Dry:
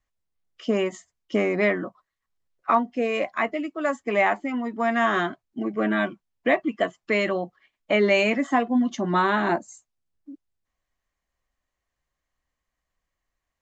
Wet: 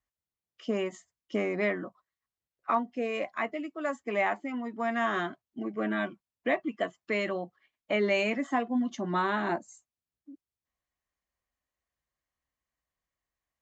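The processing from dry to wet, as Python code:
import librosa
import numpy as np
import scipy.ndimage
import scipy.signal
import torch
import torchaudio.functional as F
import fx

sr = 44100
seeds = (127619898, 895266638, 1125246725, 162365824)

y = scipy.signal.sosfilt(scipy.signal.butter(2, 48.0, 'highpass', fs=sr, output='sos'), x)
y = F.gain(torch.from_numpy(y), -7.0).numpy()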